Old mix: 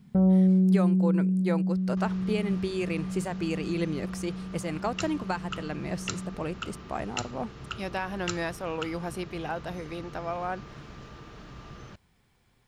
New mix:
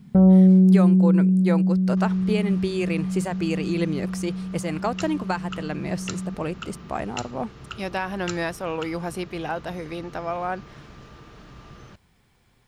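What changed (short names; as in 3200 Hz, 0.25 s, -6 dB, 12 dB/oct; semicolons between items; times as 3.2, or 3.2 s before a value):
speech +4.5 dB; first sound +7.0 dB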